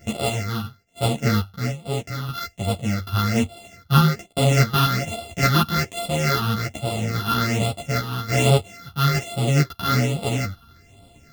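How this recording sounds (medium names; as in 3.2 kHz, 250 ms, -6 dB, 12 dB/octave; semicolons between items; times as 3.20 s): a buzz of ramps at a fixed pitch in blocks of 64 samples; phasing stages 6, 1.2 Hz, lowest notch 560–1700 Hz; random-step tremolo; a shimmering, thickened sound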